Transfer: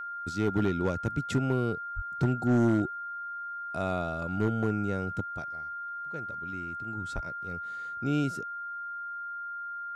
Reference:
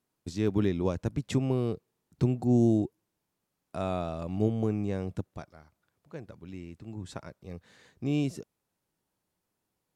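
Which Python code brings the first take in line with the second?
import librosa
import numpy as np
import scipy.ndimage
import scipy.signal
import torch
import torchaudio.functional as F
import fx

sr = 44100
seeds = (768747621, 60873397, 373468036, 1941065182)

y = fx.fix_declip(x, sr, threshold_db=-19.0)
y = fx.notch(y, sr, hz=1400.0, q=30.0)
y = fx.fix_deplosive(y, sr, at_s=(1.95, 7.14))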